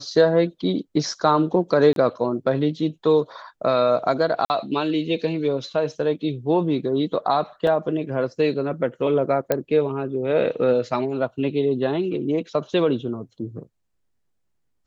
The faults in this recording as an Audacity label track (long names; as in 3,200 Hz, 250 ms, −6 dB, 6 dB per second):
1.930000	1.960000	drop-out 32 ms
4.450000	4.500000	drop-out 49 ms
7.670000	7.670000	drop-out 2.9 ms
9.520000	9.520000	click −7 dBFS